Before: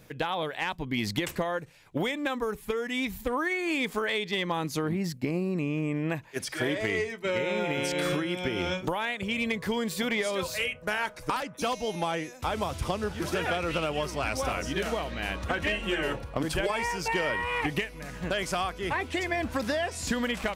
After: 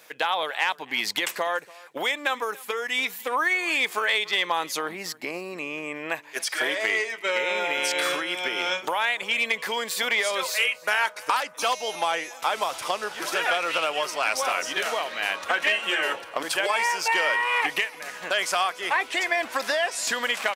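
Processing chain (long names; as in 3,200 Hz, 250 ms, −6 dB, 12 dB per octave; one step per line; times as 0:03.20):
high-pass filter 720 Hz 12 dB per octave
single-tap delay 287 ms −22 dB
level +7.5 dB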